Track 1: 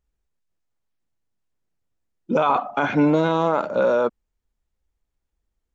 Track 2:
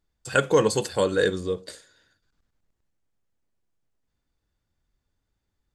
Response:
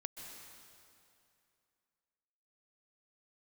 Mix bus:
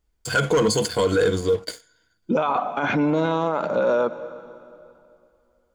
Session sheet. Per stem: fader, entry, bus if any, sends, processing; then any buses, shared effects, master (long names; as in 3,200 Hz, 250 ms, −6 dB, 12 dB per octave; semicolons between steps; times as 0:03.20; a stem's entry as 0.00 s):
+3.0 dB, 0.00 s, send −11 dB, no processing
−0.5 dB, 0.00 s, no send, EQ curve with evenly spaced ripples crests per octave 1.8, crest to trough 11 dB; leveller curve on the samples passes 2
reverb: on, RT60 2.6 s, pre-delay 118 ms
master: brickwall limiter −13 dBFS, peak gain reduction 9.5 dB